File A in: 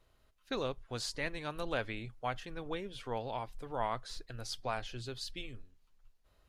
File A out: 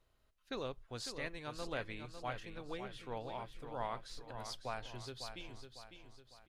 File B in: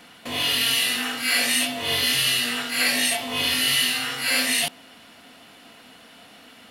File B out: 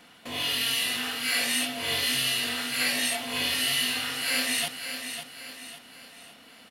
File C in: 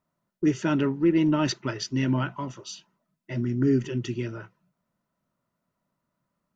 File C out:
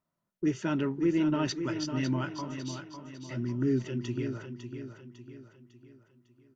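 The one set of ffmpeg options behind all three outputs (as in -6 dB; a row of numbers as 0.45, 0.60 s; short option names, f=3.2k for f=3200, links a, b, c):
-af "aecho=1:1:552|1104|1656|2208|2760:0.376|0.165|0.0728|0.032|0.0141,volume=-5.5dB"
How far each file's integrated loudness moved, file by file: -5.0, -5.5, -5.5 LU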